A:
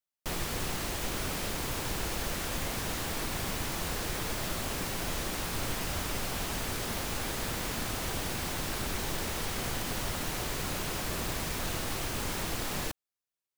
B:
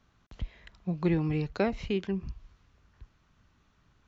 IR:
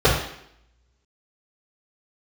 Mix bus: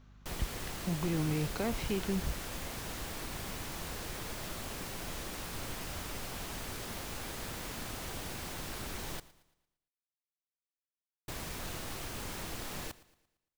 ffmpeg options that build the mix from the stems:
-filter_complex "[0:a]volume=-7dB,asplit=3[link_01][link_02][link_03];[link_01]atrim=end=9.2,asetpts=PTS-STARTPTS,afade=type=out:start_time=9.196:duration=0.004:curve=hsin[link_04];[link_02]atrim=start=9.2:end=11.28,asetpts=PTS-STARTPTS,volume=0[link_05];[link_03]atrim=start=11.28,asetpts=PTS-STARTPTS,afade=type=in:duration=0.004:curve=hsin[link_06];[link_04][link_05][link_06]concat=n=3:v=0:a=1,asplit=2[link_07][link_08];[link_08]volume=-19dB[link_09];[1:a]alimiter=level_in=3.5dB:limit=-24dB:level=0:latency=1,volume=-3.5dB,aeval=exprs='val(0)+0.00126*(sin(2*PI*50*n/s)+sin(2*PI*2*50*n/s)/2+sin(2*PI*3*50*n/s)/3+sin(2*PI*4*50*n/s)/4+sin(2*PI*5*50*n/s)/5)':channel_layout=same,volume=2dB[link_10];[link_09]aecho=0:1:114|228|342|456|570|684:1|0.42|0.176|0.0741|0.0311|0.0131[link_11];[link_07][link_10][link_11]amix=inputs=3:normalize=0"

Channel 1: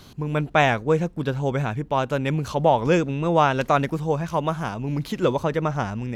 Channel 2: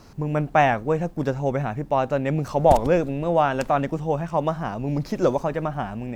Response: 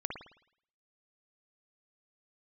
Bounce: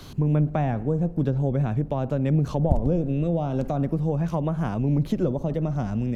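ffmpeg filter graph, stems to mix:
-filter_complex "[0:a]acompressor=threshold=-30dB:ratio=2,volume=2.5dB[link_01];[1:a]tiltshelf=frequency=690:gain=10,volume=-7dB,asplit=3[link_02][link_03][link_04];[link_03]volume=-14.5dB[link_05];[link_04]apad=whole_len=271629[link_06];[link_01][link_06]sidechaincompress=threshold=-30dB:ratio=8:attack=16:release=404[link_07];[2:a]atrim=start_sample=2205[link_08];[link_05][link_08]afir=irnorm=-1:irlink=0[link_09];[link_07][link_02][link_09]amix=inputs=3:normalize=0,acrossover=split=230[link_10][link_11];[link_11]acompressor=threshold=-25dB:ratio=4[link_12];[link_10][link_12]amix=inputs=2:normalize=0"

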